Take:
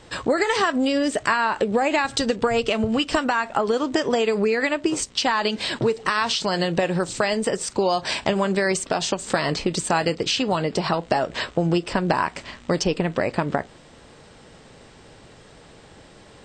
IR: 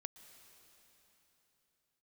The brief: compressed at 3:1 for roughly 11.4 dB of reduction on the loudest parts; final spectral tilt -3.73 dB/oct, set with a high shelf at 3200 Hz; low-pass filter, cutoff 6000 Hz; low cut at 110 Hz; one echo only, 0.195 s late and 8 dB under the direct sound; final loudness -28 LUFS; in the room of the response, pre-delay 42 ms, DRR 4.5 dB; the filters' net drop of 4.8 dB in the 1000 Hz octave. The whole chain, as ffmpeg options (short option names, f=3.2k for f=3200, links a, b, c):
-filter_complex "[0:a]highpass=110,lowpass=6k,equalizer=f=1k:t=o:g=-5.5,highshelf=f=3.2k:g=-7,acompressor=threshold=-34dB:ratio=3,aecho=1:1:195:0.398,asplit=2[a][b];[1:a]atrim=start_sample=2205,adelay=42[c];[b][c]afir=irnorm=-1:irlink=0,volume=0.5dB[d];[a][d]amix=inputs=2:normalize=0,volume=5dB"